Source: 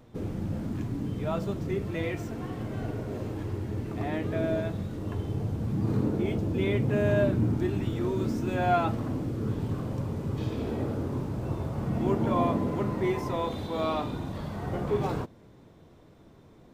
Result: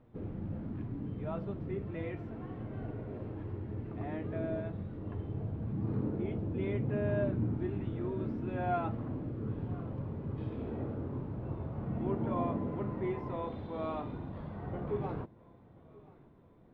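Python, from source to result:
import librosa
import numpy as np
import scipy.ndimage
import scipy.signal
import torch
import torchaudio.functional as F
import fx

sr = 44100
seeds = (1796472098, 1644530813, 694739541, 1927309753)

y = fx.air_absorb(x, sr, metres=460.0)
y = fx.echo_feedback(y, sr, ms=1032, feedback_pct=52, wet_db=-23)
y = F.gain(torch.from_numpy(y), -6.5).numpy()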